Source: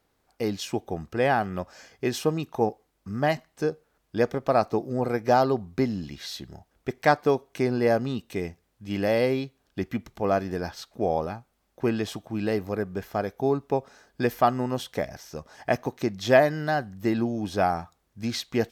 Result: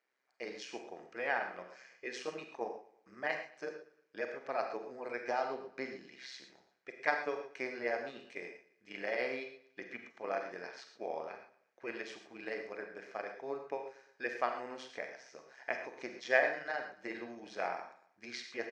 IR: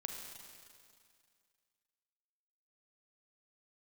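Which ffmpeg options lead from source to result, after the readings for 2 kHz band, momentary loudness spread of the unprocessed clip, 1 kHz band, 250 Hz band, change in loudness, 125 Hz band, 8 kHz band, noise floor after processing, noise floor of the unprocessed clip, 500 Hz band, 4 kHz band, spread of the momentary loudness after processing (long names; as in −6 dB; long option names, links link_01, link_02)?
−4.5 dB, 13 LU, −13.0 dB, −21.0 dB, −12.5 dB, −32.5 dB, −14.5 dB, −74 dBFS, −72 dBFS, −14.0 dB, −12.5 dB, 15 LU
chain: -filter_complex "[0:a]equalizer=frequency=1800:width=4:gain=7,bandreject=frequency=2600:width=12,tremolo=f=130:d=0.75,highpass=470,equalizer=frequency=830:width_type=q:width=4:gain=-3,equalizer=frequency=2400:width_type=q:width=4:gain=10,equalizer=frequency=3500:width_type=q:width=4:gain=-5,lowpass=frequency=6500:width=0.5412,lowpass=frequency=6500:width=1.3066,aecho=1:1:116|232|348:0.112|0.0482|0.0207[link_01];[1:a]atrim=start_sample=2205,atrim=end_sample=6174[link_02];[link_01][link_02]afir=irnorm=-1:irlink=0,volume=-6dB"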